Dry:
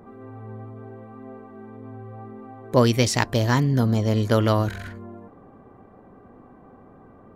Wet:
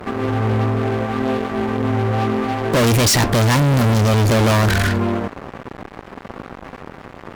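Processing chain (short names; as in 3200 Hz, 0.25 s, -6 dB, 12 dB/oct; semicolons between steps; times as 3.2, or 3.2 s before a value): fuzz box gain 38 dB, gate -46 dBFS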